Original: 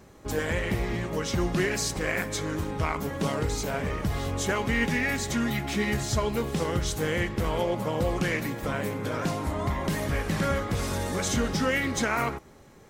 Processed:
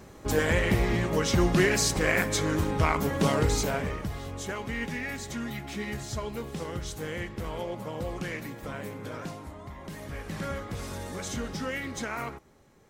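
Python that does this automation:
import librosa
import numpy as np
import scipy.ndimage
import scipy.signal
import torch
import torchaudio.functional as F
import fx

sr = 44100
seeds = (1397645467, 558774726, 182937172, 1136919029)

y = fx.gain(x, sr, db=fx.line((3.59, 3.5), (4.18, -7.5), (9.15, -7.5), (9.64, -15.0), (10.43, -7.5)))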